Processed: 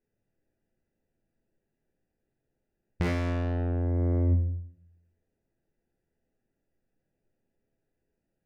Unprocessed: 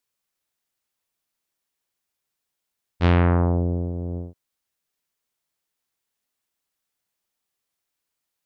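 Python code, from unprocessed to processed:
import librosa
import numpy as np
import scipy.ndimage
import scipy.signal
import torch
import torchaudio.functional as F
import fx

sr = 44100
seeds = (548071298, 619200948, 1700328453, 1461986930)

y = fx.wiener(x, sr, points=41)
y = fx.graphic_eq_31(y, sr, hz=(250, 1250, 2000, 4000), db=(4, -6, 7, -11))
y = fx.room_shoebox(y, sr, seeds[0], volume_m3=40.0, walls='mixed', distance_m=0.76)
y = 10.0 ** (-21.0 / 20.0) * np.tanh(y / 10.0 ** (-21.0 / 20.0))
y = fx.low_shelf(y, sr, hz=140.0, db=5.0)
y = fx.over_compress(y, sr, threshold_db=-28.0, ratio=-1.0)
y = fx.echo_feedback(y, sr, ms=82, feedback_pct=43, wet_db=-13)
y = F.gain(torch.from_numpy(y), 1.5).numpy()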